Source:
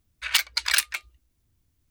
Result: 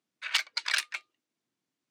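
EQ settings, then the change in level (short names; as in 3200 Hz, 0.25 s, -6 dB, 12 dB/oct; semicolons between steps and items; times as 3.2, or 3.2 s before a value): Bessel high-pass 280 Hz, order 8; air absorption 63 m; -4.0 dB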